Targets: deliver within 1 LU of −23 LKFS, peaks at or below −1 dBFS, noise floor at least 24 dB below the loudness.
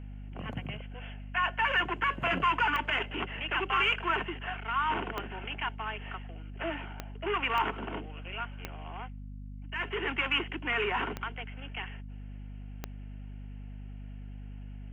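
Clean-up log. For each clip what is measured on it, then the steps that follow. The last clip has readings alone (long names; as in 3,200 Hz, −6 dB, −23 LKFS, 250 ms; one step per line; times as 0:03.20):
number of clicks 7; mains hum 50 Hz; hum harmonics up to 250 Hz; level of the hum −40 dBFS; integrated loudness −32.0 LKFS; sample peak −16.5 dBFS; target loudness −23.0 LKFS
→ click removal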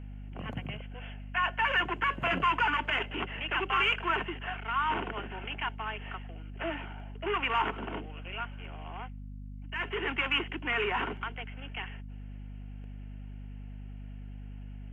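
number of clicks 0; mains hum 50 Hz; hum harmonics up to 250 Hz; level of the hum −40 dBFS
→ mains-hum notches 50/100/150/200/250 Hz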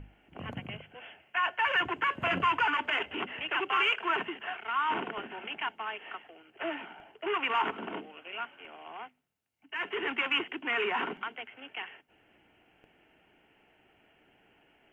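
mains hum none found; integrated loudness −31.5 LKFS; sample peak −16.5 dBFS; target loudness −23.0 LKFS
→ level +8.5 dB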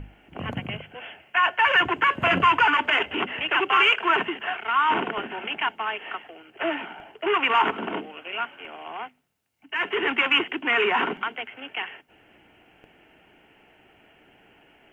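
integrated loudness −23.0 LKFS; sample peak −8.0 dBFS; background noise floor −59 dBFS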